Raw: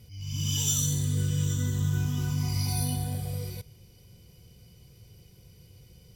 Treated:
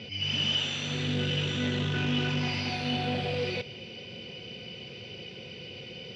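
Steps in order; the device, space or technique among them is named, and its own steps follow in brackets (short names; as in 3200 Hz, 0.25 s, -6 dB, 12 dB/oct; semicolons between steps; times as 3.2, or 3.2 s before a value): overdrive pedal into a guitar cabinet (overdrive pedal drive 34 dB, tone 6300 Hz, clips at -13.5 dBFS; speaker cabinet 94–4000 Hz, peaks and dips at 230 Hz +9 dB, 380 Hz +4 dB, 540 Hz +5 dB, 1100 Hz -7 dB, 2700 Hz +10 dB); gain -8 dB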